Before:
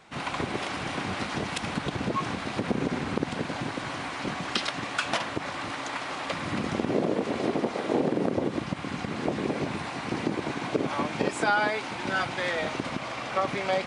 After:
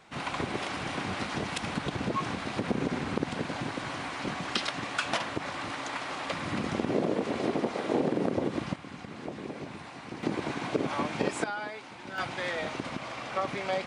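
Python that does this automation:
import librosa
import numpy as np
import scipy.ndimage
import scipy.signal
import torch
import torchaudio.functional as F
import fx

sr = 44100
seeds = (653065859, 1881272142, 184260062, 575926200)

y = fx.gain(x, sr, db=fx.steps((0.0, -2.0), (8.76, -10.0), (10.23, -2.0), (11.44, -11.5), (12.18, -4.0)))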